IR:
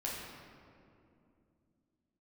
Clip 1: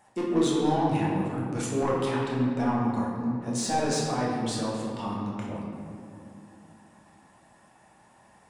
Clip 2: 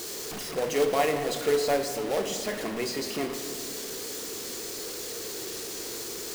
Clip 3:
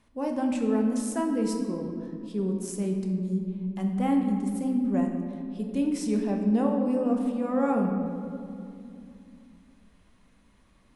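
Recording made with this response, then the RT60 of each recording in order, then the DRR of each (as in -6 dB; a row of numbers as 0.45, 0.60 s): 1; 2.6, 2.8, 2.6 s; -5.0, 5.5, 1.5 dB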